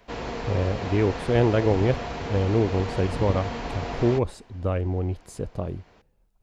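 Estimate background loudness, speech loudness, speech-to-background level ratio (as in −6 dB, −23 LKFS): −32.5 LKFS, −26.0 LKFS, 6.5 dB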